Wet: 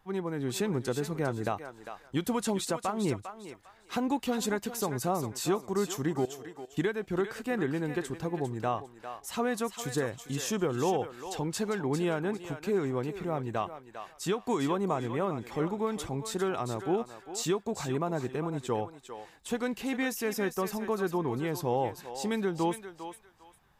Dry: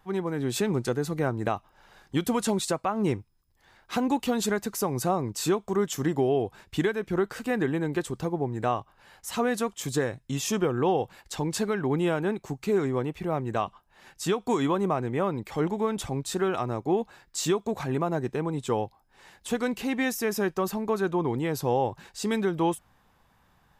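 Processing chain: 6.25–6.77 resonator 450 Hz, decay 0.53 s, mix 90%; thinning echo 0.401 s, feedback 25%, high-pass 650 Hz, level -8 dB; gain -4 dB

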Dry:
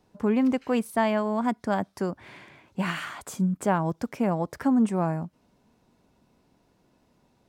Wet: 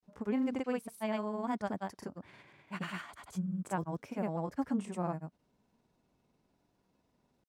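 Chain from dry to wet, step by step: grains, spray 0.1 s, pitch spread up and down by 0 st; gain -8.5 dB

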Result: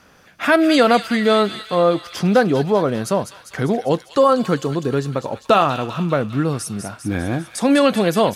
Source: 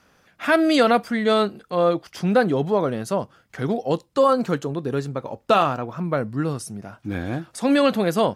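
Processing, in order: in parallel at 0 dB: compressor, threshold -28 dBFS, peak gain reduction 15 dB; on the sum: thin delay 0.199 s, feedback 64%, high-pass 2400 Hz, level -6.5 dB; gain +1.5 dB

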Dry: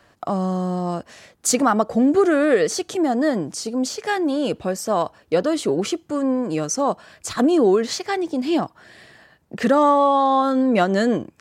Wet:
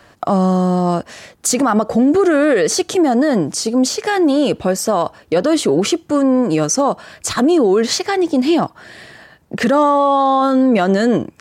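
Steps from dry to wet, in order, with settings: limiter -15 dBFS, peak gain reduction 8.5 dB; gain +8.5 dB

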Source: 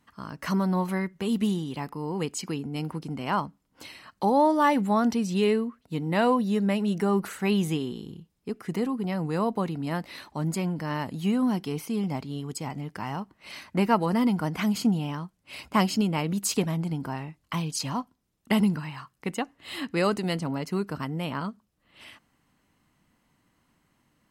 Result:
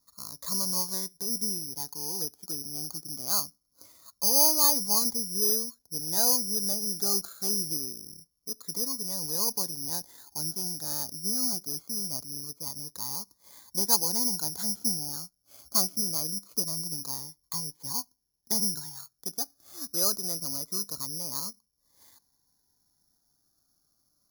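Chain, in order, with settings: LPF 1400 Hz 24 dB/oct; bell 190 Hz -7.5 dB 1.9 oct; careless resampling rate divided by 8×, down filtered, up zero stuff; cascading phaser falling 0.24 Hz; gain -7.5 dB

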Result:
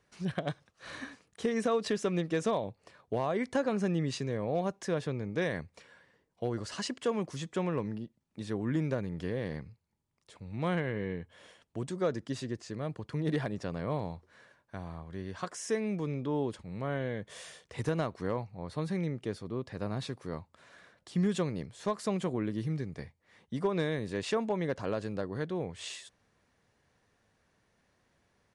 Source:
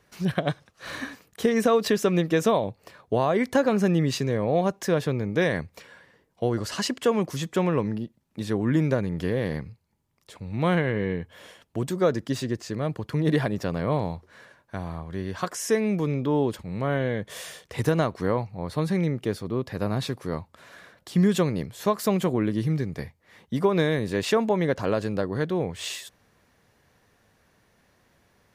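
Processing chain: hard clip -13 dBFS, distortion -32 dB; downsampling 22050 Hz; gain -8.5 dB

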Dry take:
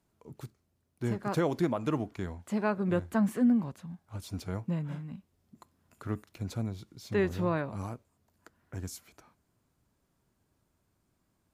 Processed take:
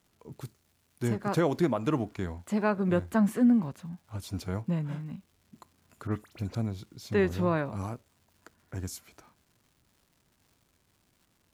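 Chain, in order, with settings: 0.45–1.08 high shelf 4800 Hz +9.5 dB; crackle 390/s -58 dBFS; 6.07–6.55 dispersion highs, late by 46 ms, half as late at 2300 Hz; gain +2.5 dB

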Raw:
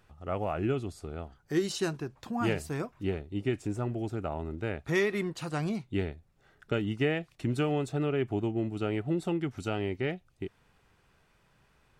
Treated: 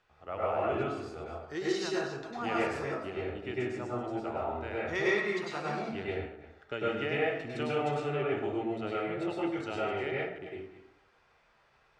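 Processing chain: reverse delay 0.155 s, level -11 dB; three-band isolator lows -12 dB, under 420 Hz, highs -21 dB, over 6500 Hz; plate-style reverb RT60 0.72 s, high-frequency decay 0.5×, pre-delay 90 ms, DRR -6 dB; gain -4 dB

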